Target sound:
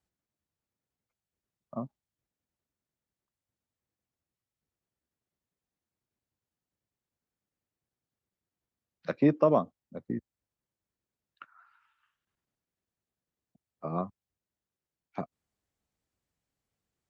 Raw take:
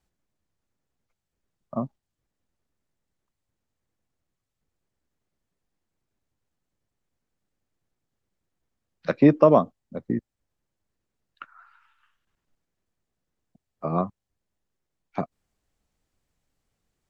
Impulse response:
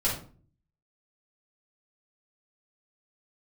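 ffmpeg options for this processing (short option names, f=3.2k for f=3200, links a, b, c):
-af "highpass=57,volume=-7.5dB"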